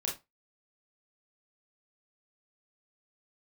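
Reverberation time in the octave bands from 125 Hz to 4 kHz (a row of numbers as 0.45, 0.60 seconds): 0.25, 0.25, 0.20, 0.25, 0.20, 0.20 seconds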